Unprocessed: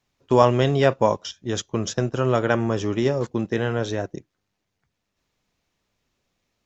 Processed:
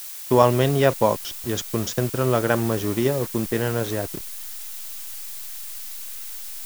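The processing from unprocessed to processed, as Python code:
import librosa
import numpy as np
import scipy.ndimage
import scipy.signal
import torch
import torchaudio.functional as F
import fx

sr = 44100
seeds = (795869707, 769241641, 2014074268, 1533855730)

y = fx.delta_hold(x, sr, step_db=-33.5)
y = fx.dmg_noise_colour(y, sr, seeds[0], colour='blue', level_db=-36.0)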